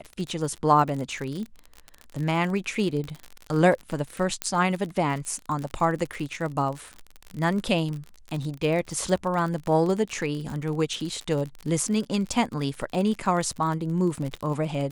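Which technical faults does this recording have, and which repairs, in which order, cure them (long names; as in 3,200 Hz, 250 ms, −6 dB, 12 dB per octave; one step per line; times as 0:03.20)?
surface crackle 42 per second −30 dBFS
0:04.42: click −9 dBFS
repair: click removal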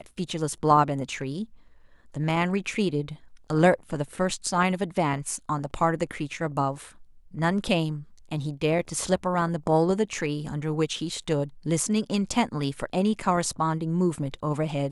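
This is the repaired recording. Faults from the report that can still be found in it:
none of them is left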